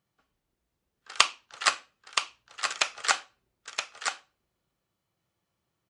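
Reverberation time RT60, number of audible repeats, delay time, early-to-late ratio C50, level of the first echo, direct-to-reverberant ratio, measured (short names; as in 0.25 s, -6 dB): none, 1, 0.972 s, none, -6.0 dB, none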